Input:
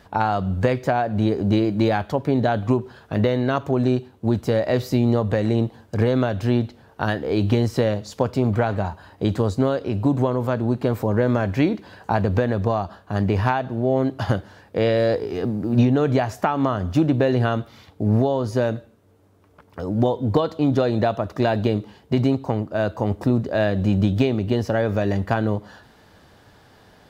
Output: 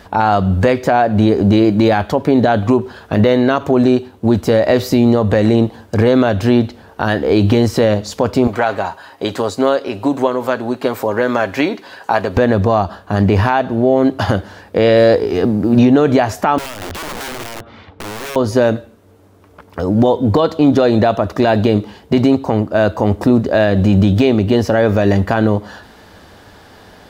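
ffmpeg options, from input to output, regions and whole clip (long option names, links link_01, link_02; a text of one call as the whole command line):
ffmpeg -i in.wav -filter_complex "[0:a]asettb=1/sr,asplit=3[link_01][link_02][link_03];[link_01]atrim=end=8.474[link_04];[link_02]atrim=start=8.47:end=12.37,asetpts=PTS-STARTPTS,afade=type=in:duration=0.004:curve=qsin,afade=type=out:start_time=3.896:duration=0.004:curve=qsin,highpass=frequency=660:poles=1,aecho=1:1:7.4:0.3,atrim=end_sample=171990[link_05];[link_03]atrim=start=12.366[link_06];[link_04][link_05]acrossfade=duration=0.004:curve1=hsin:curve2=qsin[link_07];[link_07][link_06]acrossfade=duration=0.004:curve1=qsin:curve2=hsin,asettb=1/sr,asplit=3[link_08][link_09][link_10];[link_08]atrim=end=16.584[link_11];[link_09]atrim=start=16.58:end=18.36,asetpts=PTS-STARTPTS,afade=type=in:duration=0.004:curve=qsin,afade=type=out:start_time=1.776:duration=0.004:curve=qsin,lowpass=2500,acompressor=threshold=-36dB:ratio=2.5:attack=3.2:release=140:knee=1:detection=peak,aeval=exprs='(mod(39.8*val(0)+1,2)-1)/39.8':channel_layout=same[link_12];[link_10]atrim=start=18.356[link_13];[link_11][link_12]acrossfade=duration=0.004:curve1=hsin:curve2=qsin[link_14];[link_14][link_13]acrossfade=duration=0.004:curve1=qsin:curve2=hsin,equalizer=frequency=130:width_type=o:width=0.33:gain=-10.5,alimiter=level_in=11.5dB:limit=-1dB:release=50:level=0:latency=1,volume=-1dB" out.wav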